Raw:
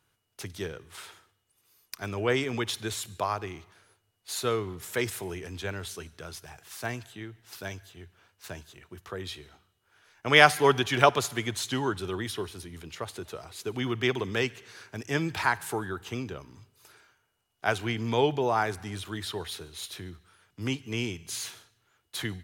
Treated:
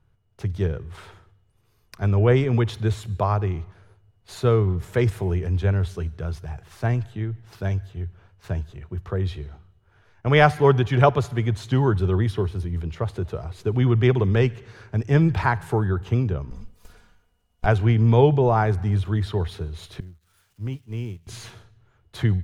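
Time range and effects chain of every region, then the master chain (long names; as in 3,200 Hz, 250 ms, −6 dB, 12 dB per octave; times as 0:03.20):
0:16.50–0:17.66: lower of the sound and its delayed copy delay 4.1 ms + high-shelf EQ 4,600 Hz +11.5 dB
0:20.00–0:21.27: spike at every zero crossing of −31 dBFS + downward expander −31 dBFS + downward compressor 1.5 to 1, threshold −58 dBFS
whole clip: spectral tilt −4.5 dB per octave; automatic gain control gain up to 4.5 dB; parametric band 280 Hz −6.5 dB 0.7 octaves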